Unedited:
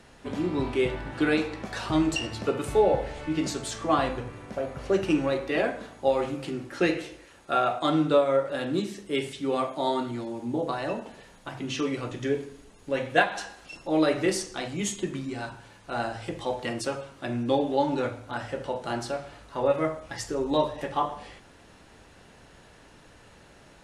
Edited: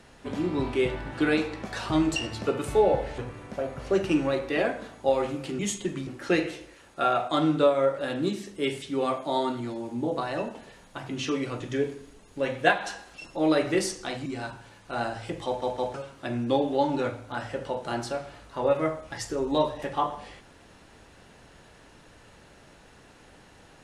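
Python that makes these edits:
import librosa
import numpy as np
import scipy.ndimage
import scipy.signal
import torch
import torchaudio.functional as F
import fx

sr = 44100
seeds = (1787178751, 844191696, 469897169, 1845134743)

y = fx.edit(x, sr, fx.cut(start_s=3.18, length_s=0.99),
    fx.move(start_s=14.77, length_s=0.48, to_s=6.58),
    fx.stutter_over(start_s=16.45, slice_s=0.16, count=3), tone=tone)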